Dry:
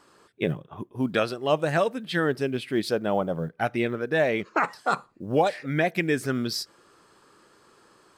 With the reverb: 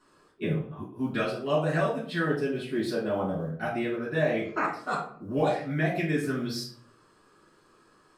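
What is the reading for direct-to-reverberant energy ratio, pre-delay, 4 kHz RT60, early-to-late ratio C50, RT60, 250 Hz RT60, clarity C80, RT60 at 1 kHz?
−7.5 dB, 5 ms, 0.35 s, 5.5 dB, 0.55 s, 0.70 s, 10.0 dB, 0.50 s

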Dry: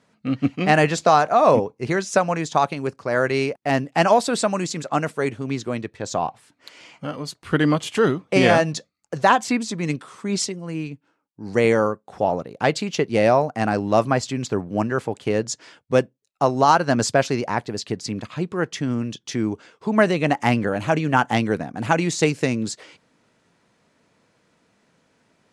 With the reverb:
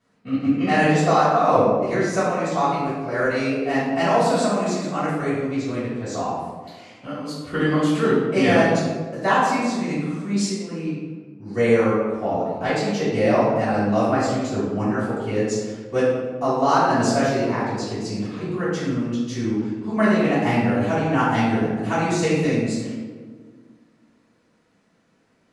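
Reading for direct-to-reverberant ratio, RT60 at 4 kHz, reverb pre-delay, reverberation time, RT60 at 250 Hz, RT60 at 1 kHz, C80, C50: −13.5 dB, 0.80 s, 3 ms, 1.6 s, 2.3 s, 1.3 s, 1.5 dB, −1.5 dB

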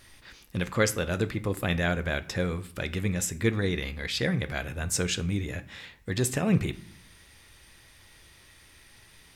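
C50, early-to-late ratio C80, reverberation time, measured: 17.5 dB, 21.5 dB, 0.60 s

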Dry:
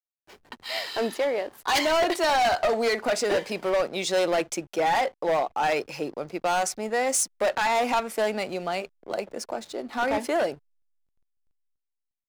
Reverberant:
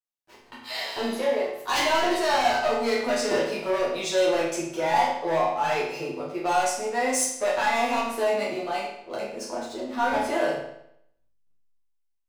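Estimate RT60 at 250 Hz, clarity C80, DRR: 0.75 s, 6.0 dB, −7.5 dB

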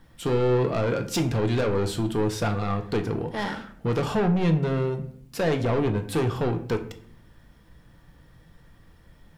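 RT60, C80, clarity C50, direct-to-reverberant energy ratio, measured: 0.60 s, 15.5 dB, 12.0 dB, 5.5 dB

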